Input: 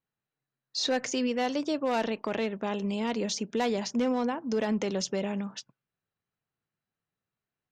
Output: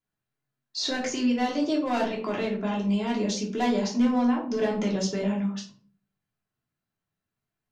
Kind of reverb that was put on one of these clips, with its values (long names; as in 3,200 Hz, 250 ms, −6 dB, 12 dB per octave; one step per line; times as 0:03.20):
rectangular room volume 330 cubic metres, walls furnished, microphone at 3.1 metres
level −3.5 dB